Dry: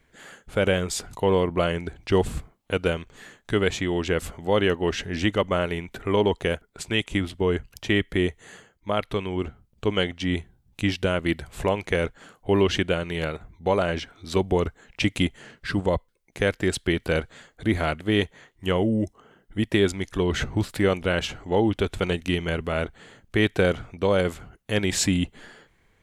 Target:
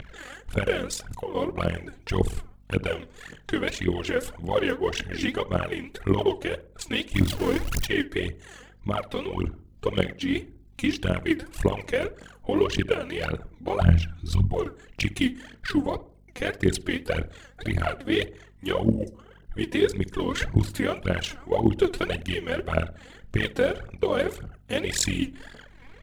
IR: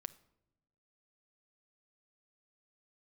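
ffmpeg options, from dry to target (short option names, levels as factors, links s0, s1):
-filter_complex "[0:a]asettb=1/sr,asplit=3[s0][s1][s2];[s0]atrim=end=7.144[s3];[s1]atrim=start=7.14:end=7.86,asetpts=PTS-STARTPTS,afade=t=in:d=0.004:c=qsin,afade=t=out:st=0.716:d=0.004:c=qsin,aeval=exprs='val(0)+0.5*0.0562*sgn(val(0))':c=same[s4];[s2]atrim=start=7.856[s5];[s3][s4]acrossfade=d=0.004:c1=hsin:c2=qsin[s6];[s6][s5]acrossfade=d=0.004:c1=qsin:c2=hsin,asplit=3[s7][s8][s9];[s7]afade=t=out:st=13.8:d=0.02[s10];[s8]asubboost=boost=10:cutoff=140,afade=t=in:st=13.8:d=0.02,afade=t=out:st=14.51:d=0.02[s11];[s9]afade=t=in:st=14.51:d=0.02[s12];[s10][s11][s12]amix=inputs=3:normalize=0,acrossover=split=5300[s13][s14];[s13]acompressor=mode=upward:threshold=0.0178:ratio=2.5[s15];[s15][s14]amix=inputs=2:normalize=0,alimiter=limit=0.237:level=0:latency=1:release=444,asettb=1/sr,asplit=3[s16][s17][s18];[s16]atrim=end=0.944[s19];[s17]atrim=start=0.94:end=1.35,asetpts=PTS-STARTPTS,afade=t=in:d=0.004:c=qsin,afade=t=out:st=0.406:d=0.004:c=qsin,acompressor=threshold=0.0251:ratio=6[s20];[s18]atrim=start=1.346[s21];[s19][s20]acrossfade=d=0.004:c1=hsin:c2=qsin[s22];[s22][s21]acrossfade=d=0.004:c1=qsin:c2=hsin,tremolo=f=43:d=0.824,aphaser=in_gain=1:out_gain=1:delay=4.2:decay=0.75:speed=1.8:type=triangular,aeval=exprs='val(0)+0.00158*(sin(2*PI*50*n/s)+sin(2*PI*2*50*n/s)/2+sin(2*PI*3*50*n/s)/3+sin(2*PI*4*50*n/s)/4+sin(2*PI*5*50*n/s)/5)':c=same,asplit=2[s23][s24];[s24]adelay=60,lowpass=f=980:p=1,volume=0.178,asplit=2[s25][s26];[s26]adelay=60,lowpass=f=980:p=1,volume=0.5,asplit=2[s27][s28];[s28]adelay=60,lowpass=f=980:p=1,volume=0.5,asplit=2[s29][s30];[s30]adelay=60,lowpass=f=980:p=1,volume=0.5,asplit=2[s31][s32];[s32]adelay=60,lowpass=f=980:p=1,volume=0.5[s33];[s25][s27][s29][s31][s33]amix=inputs=5:normalize=0[s34];[s23][s34]amix=inputs=2:normalize=0"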